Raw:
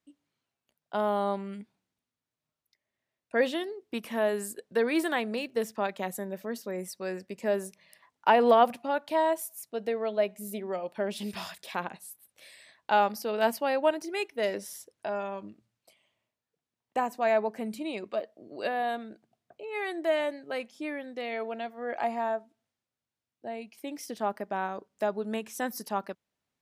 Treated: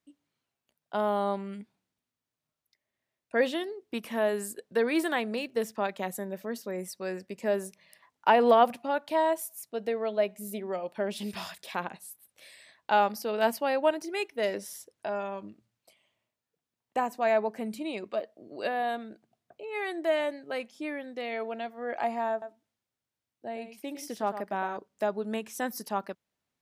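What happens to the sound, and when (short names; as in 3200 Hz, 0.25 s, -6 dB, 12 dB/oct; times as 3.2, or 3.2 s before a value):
22.31–24.77 echo 0.108 s -10 dB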